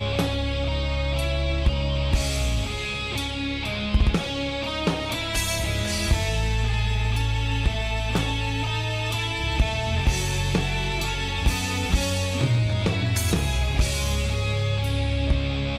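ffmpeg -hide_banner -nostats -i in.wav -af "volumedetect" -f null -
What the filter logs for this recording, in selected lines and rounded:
mean_volume: -23.7 dB
max_volume: -10.6 dB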